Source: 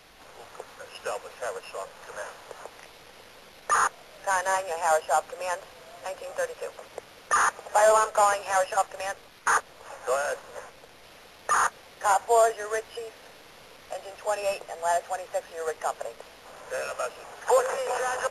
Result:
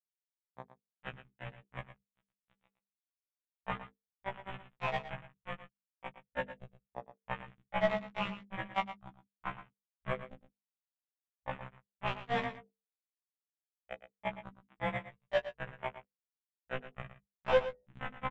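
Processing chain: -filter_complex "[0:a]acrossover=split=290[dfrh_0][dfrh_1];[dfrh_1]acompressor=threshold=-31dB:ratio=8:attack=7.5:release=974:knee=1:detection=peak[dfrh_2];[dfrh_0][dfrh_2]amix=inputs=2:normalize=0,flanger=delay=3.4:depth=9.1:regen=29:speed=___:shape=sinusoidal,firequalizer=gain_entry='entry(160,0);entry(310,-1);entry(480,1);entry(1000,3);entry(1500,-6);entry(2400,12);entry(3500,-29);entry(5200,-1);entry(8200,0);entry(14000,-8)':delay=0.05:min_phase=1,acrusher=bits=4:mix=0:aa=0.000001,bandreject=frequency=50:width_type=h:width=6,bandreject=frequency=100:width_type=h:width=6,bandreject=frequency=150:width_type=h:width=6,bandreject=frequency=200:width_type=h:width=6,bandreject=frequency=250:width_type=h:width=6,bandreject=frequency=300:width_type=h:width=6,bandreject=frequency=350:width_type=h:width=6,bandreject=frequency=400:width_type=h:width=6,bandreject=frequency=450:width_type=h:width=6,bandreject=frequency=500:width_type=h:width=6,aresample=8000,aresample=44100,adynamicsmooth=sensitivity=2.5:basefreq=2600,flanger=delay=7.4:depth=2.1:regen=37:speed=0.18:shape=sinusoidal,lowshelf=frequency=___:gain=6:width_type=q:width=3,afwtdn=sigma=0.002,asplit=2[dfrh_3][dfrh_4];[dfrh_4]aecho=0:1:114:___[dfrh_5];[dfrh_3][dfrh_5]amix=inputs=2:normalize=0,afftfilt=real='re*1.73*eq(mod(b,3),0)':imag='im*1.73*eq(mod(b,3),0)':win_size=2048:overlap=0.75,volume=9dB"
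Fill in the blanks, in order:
0.78, 240, 0.237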